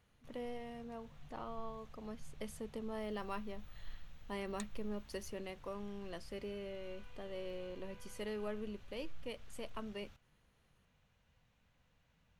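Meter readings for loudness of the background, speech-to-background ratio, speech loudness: -59.5 LUFS, 13.5 dB, -46.0 LUFS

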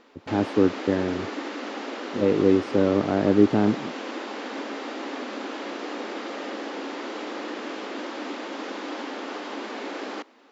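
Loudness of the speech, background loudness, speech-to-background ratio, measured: -23.0 LUFS, -33.5 LUFS, 10.5 dB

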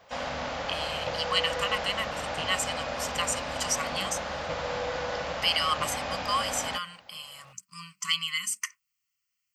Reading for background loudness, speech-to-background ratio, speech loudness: -33.0 LUFS, 3.0 dB, -30.0 LUFS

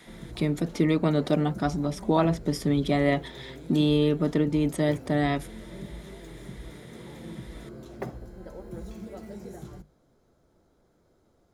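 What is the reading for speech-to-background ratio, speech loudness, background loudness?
17.5 dB, -25.5 LUFS, -43.0 LUFS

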